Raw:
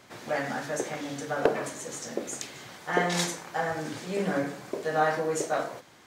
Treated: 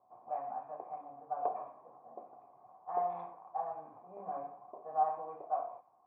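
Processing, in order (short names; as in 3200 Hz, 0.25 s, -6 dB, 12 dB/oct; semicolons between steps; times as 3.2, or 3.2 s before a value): vocal tract filter a; low-pass opened by the level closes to 800 Hz, open at -32 dBFS; gain +1 dB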